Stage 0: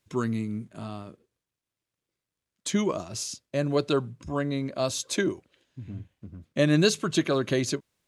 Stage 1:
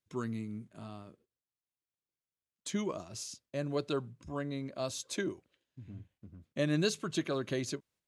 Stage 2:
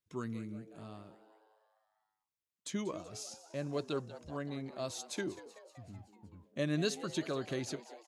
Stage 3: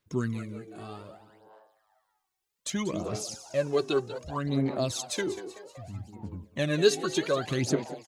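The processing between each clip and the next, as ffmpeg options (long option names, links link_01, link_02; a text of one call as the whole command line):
ffmpeg -i in.wav -af "agate=range=-6dB:threshold=-57dB:ratio=16:detection=peak,volume=-9dB" out.wav
ffmpeg -i in.wav -filter_complex "[0:a]asplit=7[link_01][link_02][link_03][link_04][link_05][link_06][link_07];[link_02]adelay=189,afreqshift=110,volume=-15.5dB[link_08];[link_03]adelay=378,afreqshift=220,volume=-19.7dB[link_09];[link_04]adelay=567,afreqshift=330,volume=-23.8dB[link_10];[link_05]adelay=756,afreqshift=440,volume=-28dB[link_11];[link_06]adelay=945,afreqshift=550,volume=-32.1dB[link_12];[link_07]adelay=1134,afreqshift=660,volume=-36.3dB[link_13];[link_01][link_08][link_09][link_10][link_11][link_12][link_13]amix=inputs=7:normalize=0,volume=-3dB" out.wav
ffmpeg -i in.wav -af "aecho=1:1:192|384:0.133|0.036,aphaser=in_gain=1:out_gain=1:delay=2.7:decay=0.64:speed=0.64:type=sinusoidal,volume=7dB" out.wav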